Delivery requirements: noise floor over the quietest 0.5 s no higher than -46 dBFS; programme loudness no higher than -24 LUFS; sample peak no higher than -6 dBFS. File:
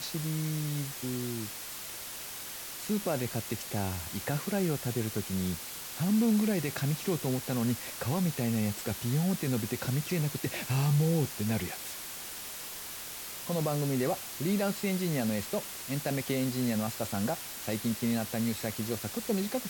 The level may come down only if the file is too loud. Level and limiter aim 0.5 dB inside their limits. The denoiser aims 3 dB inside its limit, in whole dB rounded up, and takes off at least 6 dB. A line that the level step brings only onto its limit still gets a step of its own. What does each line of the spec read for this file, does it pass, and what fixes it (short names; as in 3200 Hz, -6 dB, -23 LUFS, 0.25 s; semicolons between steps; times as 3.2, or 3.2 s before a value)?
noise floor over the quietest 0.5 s -42 dBFS: fail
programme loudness -32.0 LUFS: OK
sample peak -18.0 dBFS: OK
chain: denoiser 7 dB, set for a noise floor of -42 dBFS